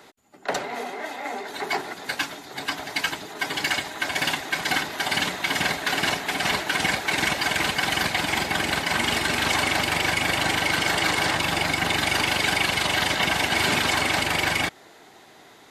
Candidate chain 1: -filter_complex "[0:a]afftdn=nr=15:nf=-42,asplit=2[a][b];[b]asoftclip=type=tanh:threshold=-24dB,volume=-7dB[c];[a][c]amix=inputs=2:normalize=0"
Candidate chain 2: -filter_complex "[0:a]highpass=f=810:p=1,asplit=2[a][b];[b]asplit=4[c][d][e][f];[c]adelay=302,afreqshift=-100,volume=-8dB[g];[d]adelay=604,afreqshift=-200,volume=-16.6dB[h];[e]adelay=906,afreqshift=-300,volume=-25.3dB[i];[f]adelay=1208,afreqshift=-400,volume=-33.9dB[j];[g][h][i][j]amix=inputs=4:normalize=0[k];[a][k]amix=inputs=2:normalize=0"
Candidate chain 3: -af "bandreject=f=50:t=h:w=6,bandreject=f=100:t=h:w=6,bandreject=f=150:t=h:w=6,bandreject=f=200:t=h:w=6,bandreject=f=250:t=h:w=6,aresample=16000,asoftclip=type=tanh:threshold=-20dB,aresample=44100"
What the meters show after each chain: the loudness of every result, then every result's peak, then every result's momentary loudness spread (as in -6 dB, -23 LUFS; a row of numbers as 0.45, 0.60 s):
-21.5, -23.5, -26.0 LUFS; -9.5, -9.0, -17.5 dBFS; 9, 11, 8 LU